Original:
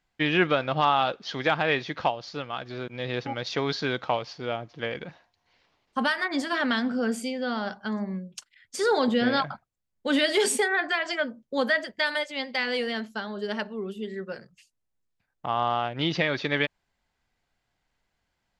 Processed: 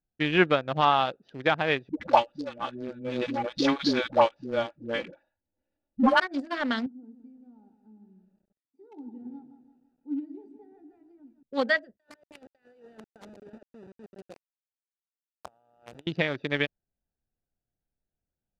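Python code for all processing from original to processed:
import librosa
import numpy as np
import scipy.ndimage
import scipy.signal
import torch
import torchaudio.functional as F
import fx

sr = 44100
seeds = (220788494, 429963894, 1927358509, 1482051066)

y = fx.chain(x, sr, fx.comb(ms=3.5, depth=0.73),
    fx.leveller(passes=1),
    fx.dispersion(late='highs', ms=120.0, hz=500.0), at=(1.89, 6.2))
y = fx.chain(y, sr, fx.vowel_filter(vowel='u'),
    fx.peak_eq(hz=2700.0, db=-13.5, octaves=0.75),
    fx.echo_crushed(ms=166, feedback_pct=55, bits=9, wet_db=-8.5), at=(6.86, 11.43))
y = fx.chain(y, sr, fx.delta_hold(step_db=-28.5),
    fx.highpass(hz=660.0, slope=6),
    fx.over_compress(threshold_db=-37.0, ratio=-0.5), at=(11.97, 16.07))
y = fx.wiener(y, sr, points=41)
y = scipy.signal.sosfilt(scipy.signal.butter(2, 8700.0, 'lowpass', fs=sr, output='sos'), y)
y = fx.upward_expand(y, sr, threshold_db=-40.0, expansion=1.5)
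y = y * 10.0 ** (3.0 / 20.0)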